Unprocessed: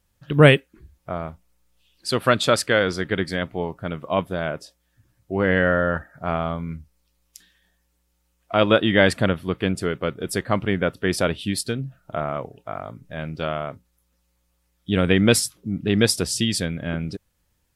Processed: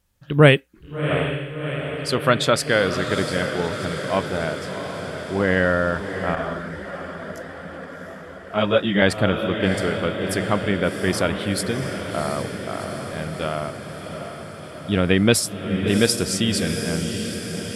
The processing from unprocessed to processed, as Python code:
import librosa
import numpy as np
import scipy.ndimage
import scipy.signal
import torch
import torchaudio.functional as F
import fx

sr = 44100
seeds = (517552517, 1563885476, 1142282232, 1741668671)

y = fx.echo_diffused(x, sr, ms=711, feedback_pct=69, wet_db=-8)
y = fx.chorus_voices(y, sr, voices=6, hz=1.4, base_ms=17, depth_ms=3.0, mix_pct=60, at=(6.35, 9.02))